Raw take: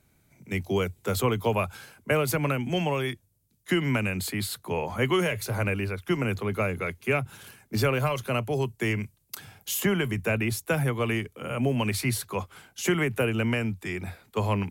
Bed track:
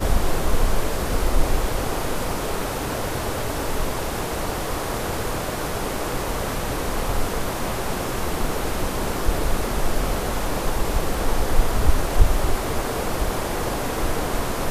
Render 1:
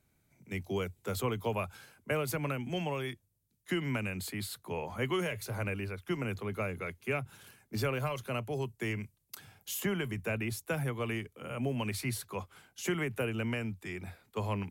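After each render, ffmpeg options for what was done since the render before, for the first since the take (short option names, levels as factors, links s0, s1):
-af "volume=0.398"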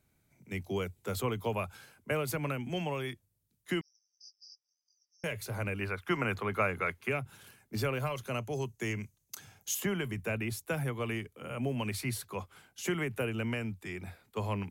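-filter_complex "[0:a]asettb=1/sr,asplit=3[s0][s1][s2];[s0]atrim=end=3.814[s3];[s1]atrim=start=3.81:end=5.24,asetpts=PTS-STARTPTS,afade=t=in:d=0.004:c=qsin,afade=t=out:st=1.426:d=0.004:c=qsin,asuperpass=centerf=5400:order=20:qfactor=3.7[s4];[s2]atrim=start=5.236[s5];[s3][s4]acrossfade=d=0.004:c1=hsin:c2=qsin[s6];[s6][s5]acrossfade=d=0.004:c1=qsin:c2=hsin,asettb=1/sr,asplit=3[s7][s8][s9];[s7]atrim=end=5.814[s10];[s8]atrim=start=5.81:end=7.09,asetpts=PTS-STARTPTS,afade=t=in:d=0.004:c=qsin,afade=t=out:st=1.276:d=0.004:c=qsin,equalizer=f=1300:t=o:w=2.2:g=10[s11];[s9]atrim=start=7.086[s12];[s10][s11]acrossfade=d=0.004:c1=hsin:c2=qsin[s13];[s13][s12]acrossfade=d=0.004:c1=qsin:c2=hsin,asettb=1/sr,asplit=3[s14][s15][s16];[s14]atrim=end=8.254[s17];[s15]atrim=start=8.25:end=9.75,asetpts=PTS-STARTPTS,afade=t=in:d=0.004:c=qsin,afade=t=out:st=1.496:d=0.004:c=qsin,equalizer=f=6400:t=o:w=0.28:g=11.5[s18];[s16]atrim=start=9.746[s19];[s17][s18]acrossfade=d=0.004:c1=hsin:c2=qsin[s20];[s20][s19]acrossfade=d=0.004:c1=qsin:c2=hsin"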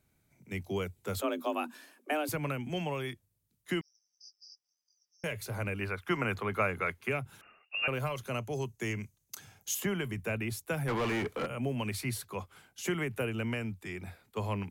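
-filter_complex "[0:a]asettb=1/sr,asplit=3[s0][s1][s2];[s0]atrim=end=1.214[s3];[s1]atrim=start=1.21:end=2.29,asetpts=PTS-STARTPTS,afade=t=in:d=0.004:c=qsin,afade=t=out:st=1.076:d=0.004:c=qsin,afreqshift=150[s4];[s2]atrim=start=2.286[s5];[s3][s4]acrossfade=d=0.004:c1=hsin:c2=qsin[s6];[s6][s5]acrossfade=d=0.004:c1=qsin:c2=hsin,asettb=1/sr,asplit=3[s7][s8][s9];[s7]atrim=end=7.414[s10];[s8]atrim=start=7.41:end=7.88,asetpts=PTS-STARTPTS,afade=t=in:d=0.004:c=qsin,afade=t=out:st=0.466:d=0.004:c=qsin,lowpass=f=2500:t=q:w=0.5098,lowpass=f=2500:t=q:w=0.6013,lowpass=f=2500:t=q:w=0.9,lowpass=f=2500:t=q:w=2.563,afreqshift=-2900[s11];[s9]atrim=start=7.876[s12];[s10][s11]acrossfade=d=0.004:c1=hsin:c2=qsin[s13];[s13][s12]acrossfade=d=0.004:c1=qsin:c2=hsin,asplit=3[s14][s15][s16];[s14]afade=t=out:st=10.87:d=0.02[s17];[s15]asplit=2[s18][s19];[s19]highpass=f=720:p=1,volume=50.1,asoftclip=type=tanh:threshold=0.0668[s20];[s18][s20]amix=inputs=2:normalize=0,lowpass=f=1400:p=1,volume=0.501,afade=t=in:st=10.87:d=0.02,afade=t=out:st=11.45:d=0.02[s21];[s16]afade=t=in:st=11.45:d=0.02[s22];[s17][s21][s22]amix=inputs=3:normalize=0"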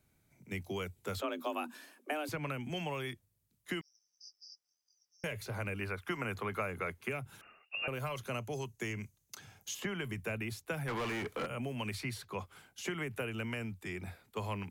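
-filter_complex "[0:a]acrossover=split=900|5700[s0][s1][s2];[s0]acompressor=threshold=0.0141:ratio=4[s3];[s1]acompressor=threshold=0.0126:ratio=4[s4];[s2]acompressor=threshold=0.002:ratio=4[s5];[s3][s4][s5]amix=inputs=3:normalize=0"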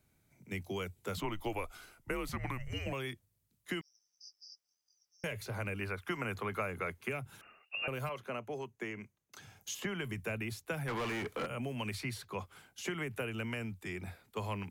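-filter_complex "[0:a]asettb=1/sr,asplit=3[s0][s1][s2];[s0]atrim=end=1.174[s3];[s1]atrim=start=1.17:end=2.93,asetpts=PTS-STARTPTS,afade=t=in:d=0.004:c=qsin,afade=t=out:st=1.756:d=0.004:c=qsin,afreqshift=-260[s4];[s2]atrim=start=2.926[s5];[s3][s4]acrossfade=d=0.004:c1=hsin:c2=qsin[s6];[s6][s5]acrossfade=d=0.004:c1=qsin:c2=hsin,asettb=1/sr,asplit=3[s7][s8][s9];[s7]atrim=end=8.094[s10];[s8]atrim=start=8.09:end=9.35,asetpts=PTS-STARTPTS,afade=t=in:d=0.004:c=qsin,afade=t=out:st=1.256:d=0.004:c=qsin,acrossover=split=190 2700:gain=0.224 1 0.224[s11][s12][s13];[s11][s12][s13]amix=inputs=3:normalize=0[s14];[s9]atrim=start=9.346[s15];[s10][s14]acrossfade=d=0.004:c1=hsin:c2=qsin[s16];[s16][s15]acrossfade=d=0.004:c1=qsin:c2=hsin"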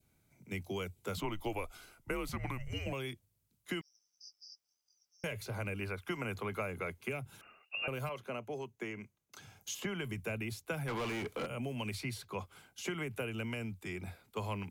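-af "adynamicequalizer=threshold=0.00178:dfrequency=1300:dqfactor=1.5:tfrequency=1300:tqfactor=1.5:attack=5:release=100:ratio=0.375:range=2:mode=cutabove:tftype=bell,bandreject=f=1800:w=9.8"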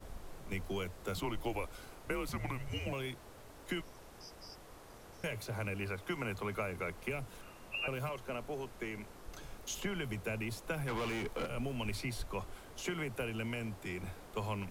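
-filter_complex "[1:a]volume=0.0376[s0];[0:a][s0]amix=inputs=2:normalize=0"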